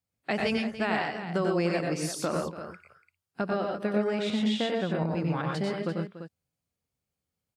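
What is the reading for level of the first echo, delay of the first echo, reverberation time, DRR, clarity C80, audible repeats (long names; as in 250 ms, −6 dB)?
−4.5 dB, 93 ms, no reverb audible, no reverb audible, no reverb audible, 4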